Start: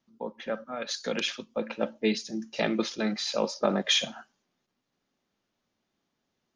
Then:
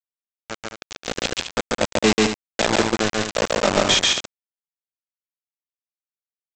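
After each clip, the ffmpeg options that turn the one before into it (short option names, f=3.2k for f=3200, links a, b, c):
-af "aresample=16000,acrusher=bits=3:mix=0:aa=0.000001,aresample=44100,aecho=1:1:139.9|212.8:0.891|0.355,dynaudnorm=f=280:g=9:m=11.5dB,volume=-1.5dB"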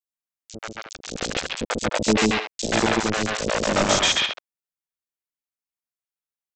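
-filter_complex "[0:a]acrossover=split=490|4000[a][b][c];[a]adelay=40[d];[b]adelay=130[e];[d][e][c]amix=inputs=3:normalize=0"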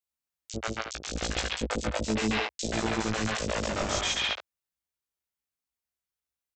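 -filter_complex "[0:a]equalizer=f=65:w=2:g=13.5,areverse,acompressor=threshold=-27dB:ratio=10,areverse,asplit=2[a][b];[b]adelay=18,volume=-4dB[c];[a][c]amix=inputs=2:normalize=0"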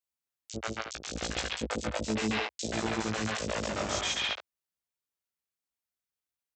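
-af "highpass=68,volume=-2.5dB"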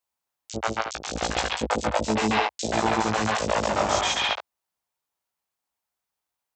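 -af "equalizer=f=860:w=1.4:g=10,volume=5dB"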